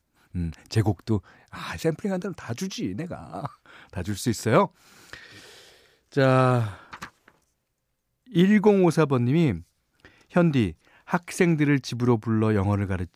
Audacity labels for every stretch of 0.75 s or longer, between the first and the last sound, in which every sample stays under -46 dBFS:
7.280000	8.290000	silence